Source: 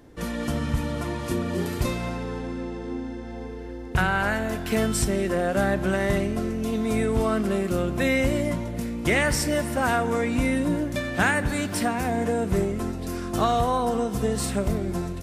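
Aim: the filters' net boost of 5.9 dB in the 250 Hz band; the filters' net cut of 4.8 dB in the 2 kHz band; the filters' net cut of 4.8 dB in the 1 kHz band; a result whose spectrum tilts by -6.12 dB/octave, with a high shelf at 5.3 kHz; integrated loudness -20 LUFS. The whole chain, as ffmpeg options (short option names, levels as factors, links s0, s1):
-af "equalizer=f=250:t=o:g=7.5,equalizer=f=1000:t=o:g=-7,equalizer=f=2000:t=o:g=-3,highshelf=f=5300:g=-5.5,volume=1.41"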